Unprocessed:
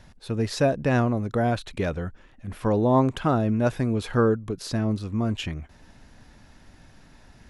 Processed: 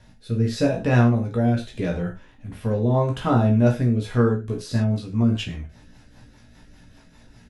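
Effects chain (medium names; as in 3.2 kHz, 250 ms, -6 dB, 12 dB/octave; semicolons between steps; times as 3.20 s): doubling 17 ms -5.5 dB; gated-style reverb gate 130 ms falling, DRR 1 dB; rotary cabinet horn 0.8 Hz, later 5 Hz, at 3.84 s; trim -1 dB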